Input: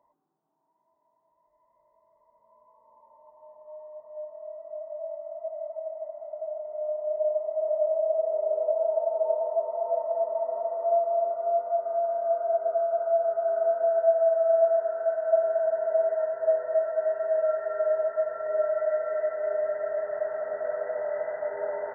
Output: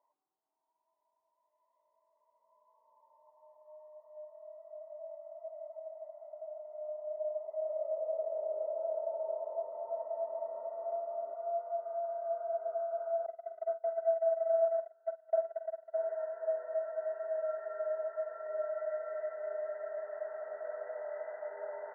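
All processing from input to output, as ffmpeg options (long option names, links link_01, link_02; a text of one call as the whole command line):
ffmpeg -i in.wav -filter_complex "[0:a]asettb=1/sr,asplit=3[link_01][link_02][link_03];[link_01]atrim=end=7.424[link_04];[link_02]atrim=start=7.42:end=11.35,asetpts=PTS-STARTPTS,afade=type=in:duration=0.004:curve=qsin,afade=type=out:start_time=3.926:duration=0.004:curve=qsin,asubboost=boost=6:cutoff=230,asplit=2[link_05][link_06];[link_06]adelay=27,volume=-4dB[link_07];[link_05][link_07]amix=inputs=2:normalize=0,atrim=end_sample=173313,asplit=5[link_08][link_09][link_10][link_11][link_12];[link_09]adelay=217,afreqshift=-66,volume=-12dB[link_13];[link_10]adelay=434,afreqshift=-132,volume=-21.1dB[link_14];[link_11]adelay=651,afreqshift=-198,volume=-30.2dB[link_15];[link_12]adelay=868,afreqshift=-264,volume=-39.4dB[link_16];[link_08][link_13][link_14][link_15][link_16]amix=inputs=5:normalize=0,atrim=end_sample=173313[link_17];[link_03]atrim=start=11.346[link_18];[link_04][link_17]acrossfade=duration=0.004:curve1=hsin:curve2=qsin[link_19];[link_19][link_18]acrossfade=duration=0.004:curve1=qsin:curve2=hsin,asettb=1/sr,asplit=3[link_20][link_21][link_22];[link_20]atrim=end=13.264[link_23];[link_21]atrim=start=13.26:end=15.94,asetpts=PTS-STARTPTS,afade=type=in:duration=0.004:curve=qsin,afade=type=out:start_time=2.676:duration=0.004:curve=qsin,agate=range=-27dB:threshold=-24dB:ratio=16:release=100:detection=peak,lowshelf=frequency=270:gain=9,asplit=2[link_24][link_25];[link_25]adelay=47,volume=-10.5dB[link_26];[link_24][link_26]amix=inputs=2:normalize=0,atrim=end_sample=118188[link_27];[link_22]atrim=start=15.936[link_28];[link_23][link_27]acrossfade=duration=0.004:curve1=hsin:curve2=qsin[link_29];[link_29][link_28]acrossfade=duration=0.004:curve1=qsin:curve2=hsin,highpass=610,aemphasis=mode=reproduction:type=bsi,volume=-8.5dB" out.wav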